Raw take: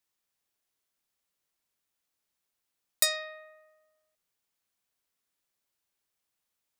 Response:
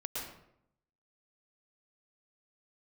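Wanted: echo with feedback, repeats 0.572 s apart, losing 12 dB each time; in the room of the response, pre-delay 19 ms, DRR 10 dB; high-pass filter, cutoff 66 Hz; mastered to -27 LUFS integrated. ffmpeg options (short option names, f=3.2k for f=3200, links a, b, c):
-filter_complex "[0:a]highpass=66,aecho=1:1:572|1144|1716:0.251|0.0628|0.0157,asplit=2[a][b];[1:a]atrim=start_sample=2205,adelay=19[c];[b][c]afir=irnorm=-1:irlink=0,volume=-12dB[d];[a][d]amix=inputs=2:normalize=0,volume=3.5dB"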